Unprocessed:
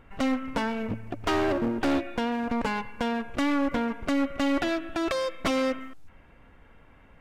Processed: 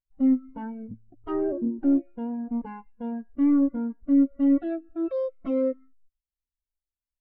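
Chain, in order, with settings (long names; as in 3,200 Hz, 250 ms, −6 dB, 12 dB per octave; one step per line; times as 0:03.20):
every bin expanded away from the loudest bin 2.5 to 1
level +5.5 dB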